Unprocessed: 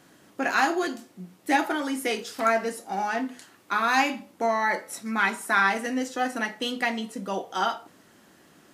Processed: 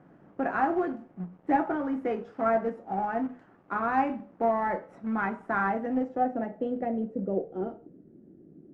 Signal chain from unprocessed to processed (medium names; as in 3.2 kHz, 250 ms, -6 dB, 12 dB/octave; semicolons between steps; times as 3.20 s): companded quantiser 4-bit; low-pass sweep 1 kHz -> 350 Hz, 5.62–8.07 s; fifteen-band graphic EQ 160 Hz +7 dB, 1 kHz -11 dB, 4 kHz -6 dB; trim -2 dB